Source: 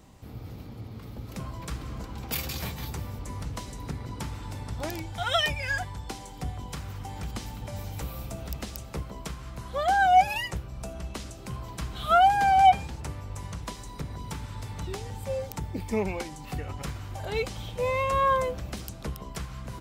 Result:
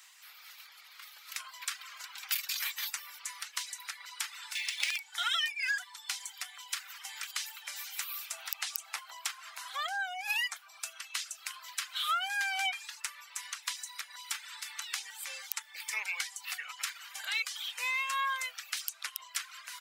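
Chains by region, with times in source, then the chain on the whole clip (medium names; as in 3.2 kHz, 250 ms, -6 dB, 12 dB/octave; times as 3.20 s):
4.55–4.98 s: resonant high shelf 1.8 kHz +9 dB, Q 3 + decimation joined by straight lines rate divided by 3×
8.33–10.80 s: peaking EQ 780 Hz +11.5 dB 0.65 oct + compression, threshold -24 dBFS
whole clip: high-pass 1.5 kHz 24 dB/octave; reverb removal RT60 0.61 s; compression 6:1, threshold -38 dBFS; trim +8.5 dB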